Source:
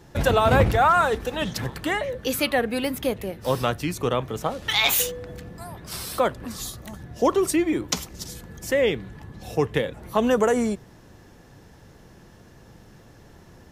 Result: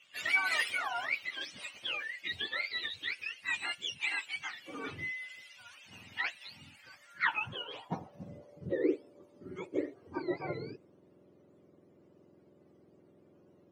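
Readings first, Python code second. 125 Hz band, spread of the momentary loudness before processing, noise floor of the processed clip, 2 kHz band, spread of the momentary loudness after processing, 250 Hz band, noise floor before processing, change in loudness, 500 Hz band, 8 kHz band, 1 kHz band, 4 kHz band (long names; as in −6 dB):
−21.0 dB, 18 LU, −63 dBFS, −4.5 dB, 19 LU, −15.0 dB, −50 dBFS, −11.5 dB, −18.0 dB, −20.5 dB, −17.0 dB, −9.5 dB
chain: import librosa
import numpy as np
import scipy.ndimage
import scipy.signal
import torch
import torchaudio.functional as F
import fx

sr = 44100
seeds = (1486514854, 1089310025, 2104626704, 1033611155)

y = fx.octave_mirror(x, sr, pivot_hz=1000.0)
y = fx.filter_sweep_bandpass(y, sr, from_hz=2700.0, to_hz=370.0, start_s=6.64, end_s=8.75, q=3.3)
y = F.gain(torch.from_numpy(y), 2.5).numpy()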